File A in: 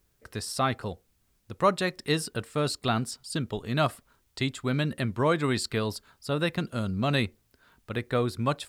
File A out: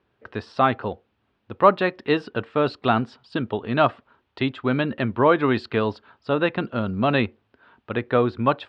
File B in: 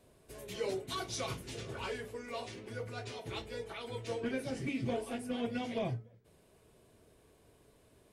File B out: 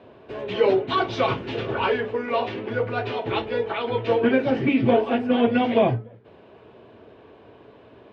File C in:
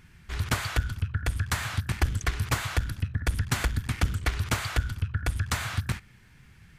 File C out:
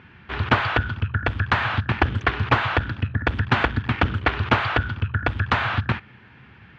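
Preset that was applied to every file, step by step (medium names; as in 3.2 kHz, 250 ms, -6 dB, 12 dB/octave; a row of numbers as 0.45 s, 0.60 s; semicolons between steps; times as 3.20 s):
cabinet simulation 130–3000 Hz, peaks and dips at 160 Hz -9 dB, 870 Hz +3 dB, 2.1 kHz -5 dB; normalise loudness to -23 LUFS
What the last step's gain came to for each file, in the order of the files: +7.5 dB, +17.5 dB, +12.0 dB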